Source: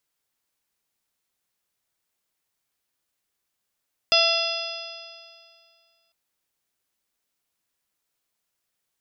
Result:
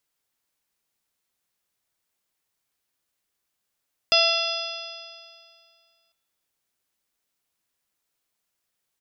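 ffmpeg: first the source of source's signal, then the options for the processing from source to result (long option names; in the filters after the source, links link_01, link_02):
-f lavfi -i "aevalsrc='0.0841*pow(10,-3*t/2.18)*sin(2*PI*665.96*t)+0.0447*pow(10,-3*t/2.18)*sin(2*PI*1337.69*t)+0.0126*pow(10,-3*t/2.18)*sin(2*PI*2020.87*t)+0.0944*pow(10,-3*t/2.18)*sin(2*PI*2721.01*t)+0.0794*pow(10,-3*t/2.18)*sin(2*PI*3443.42*t)+0.0237*pow(10,-3*t/2.18)*sin(2*PI*4193.11*t)+0.133*pow(10,-3*t/2.18)*sin(2*PI*4974.76*t)+0.0133*pow(10,-3*t/2.18)*sin(2*PI*5792.7*t)':duration=2:sample_rate=44100"
-af "aecho=1:1:178|356|534|712:0.1|0.047|0.0221|0.0104"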